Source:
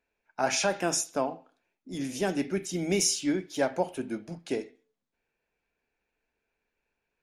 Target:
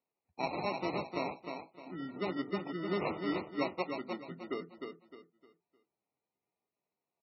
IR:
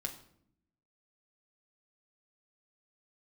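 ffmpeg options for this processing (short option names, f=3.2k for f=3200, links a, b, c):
-filter_complex "[0:a]asplit=3[a][b][c];[a]afade=t=out:st=1.28:d=0.02[d];[b]equalizer=f=770:w=0.37:g=2.5,afade=t=in:st=1.28:d=0.02,afade=t=out:st=1.97:d=0.02[e];[c]afade=t=in:st=1.97:d=0.02[f];[d][e][f]amix=inputs=3:normalize=0,asettb=1/sr,asplit=3[g][h][i];[g]atrim=end=2.674[j];[h]atrim=start=2.67:end=4.28,asetpts=PTS-STARTPTS,afade=t=in:d=0.004:c=qsin,afade=t=out:st=1.606:d=0.004:c=qsin,aeval=exprs='sgn(val(0))*max(abs(val(0))-0.00266,0)':c=same[k];[i]atrim=start=4.276[l];[j][k]acrossfade=d=0.004:c1=hsin:c2=qsin[m];[m][l]acrossfade=d=0.004:c1=qsin:c2=hsin,acompressor=mode=upward:threshold=-40dB:ratio=2.5,acrusher=samples=27:mix=1:aa=0.000001,afftdn=nr=25:nf=-38,highpass=f=100:w=0.5412,highpass=f=100:w=1.3066,equalizer=f=110:t=q:w=4:g=-9,equalizer=f=360:t=q:w=4:g=3,equalizer=f=1.8k:t=q:w=4:g=6,lowpass=f=8.7k:w=0.5412,lowpass=f=8.7k:w=1.3066,asplit=2[n][o];[o]aecho=0:1:306|612|918|1224:0.531|0.17|0.0544|0.0174[p];[n][p]amix=inputs=2:normalize=0,volume=-8dB" -ar 24000 -c:a libmp3lame -b:a 16k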